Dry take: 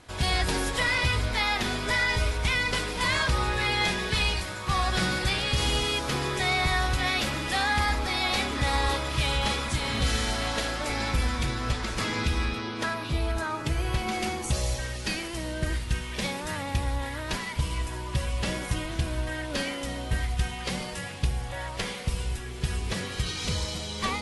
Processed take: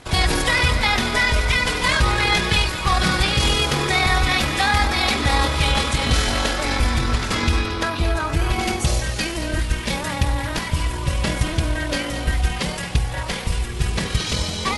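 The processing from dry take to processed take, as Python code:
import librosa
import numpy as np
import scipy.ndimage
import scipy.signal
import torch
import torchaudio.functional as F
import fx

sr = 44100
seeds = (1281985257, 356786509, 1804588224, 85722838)

y = fx.stretch_grains(x, sr, factor=0.61, grain_ms=48.0)
y = y + 10.0 ** (-12.0 / 20.0) * np.pad(y, (int(225 * sr / 1000.0), 0))[:len(y)]
y = y * librosa.db_to_amplitude(8.5)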